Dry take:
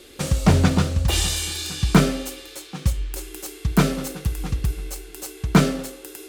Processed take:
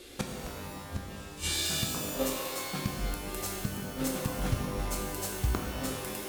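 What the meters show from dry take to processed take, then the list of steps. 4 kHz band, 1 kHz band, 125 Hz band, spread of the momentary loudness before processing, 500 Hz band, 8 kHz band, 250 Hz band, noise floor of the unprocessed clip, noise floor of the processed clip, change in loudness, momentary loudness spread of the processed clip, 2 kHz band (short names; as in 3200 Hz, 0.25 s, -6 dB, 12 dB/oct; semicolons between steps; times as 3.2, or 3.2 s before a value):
-7.5 dB, -9.0 dB, -14.5 dB, 15 LU, -9.0 dB, -6.5 dB, -13.5 dB, -44 dBFS, -45 dBFS, -11.5 dB, 10 LU, -9.0 dB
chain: in parallel at -8.5 dB: hard clip -20 dBFS, distortion -5 dB; on the sum: flipped gate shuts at -12 dBFS, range -28 dB; spectral gain 1.89–2.25, 390–1300 Hz +10 dB; shimmer reverb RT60 1.7 s, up +12 st, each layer -2 dB, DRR 1.5 dB; gain -6.5 dB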